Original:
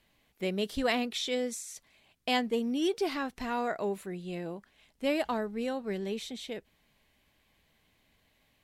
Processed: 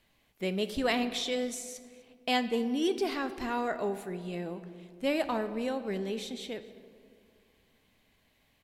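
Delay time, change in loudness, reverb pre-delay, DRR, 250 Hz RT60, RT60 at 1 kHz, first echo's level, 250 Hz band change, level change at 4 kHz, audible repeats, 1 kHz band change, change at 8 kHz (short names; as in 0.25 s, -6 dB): 0.248 s, +0.5 dB, 8 ms, 10.5 dB, 2.6 s, 1.8 s, -23.0 dB, +0.5 dB, +0.5 dB, 1, +0.5 dB, 0.0 dB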